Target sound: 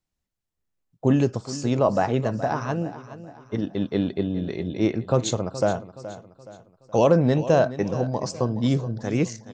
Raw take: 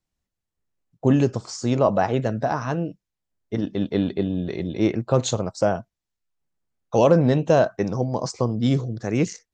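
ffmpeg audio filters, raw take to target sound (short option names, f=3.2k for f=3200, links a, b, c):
-af "aecho=1:1:422|844|1266|1688:0.188|0.0791|0.0332|0.014,volume=-1.5dB"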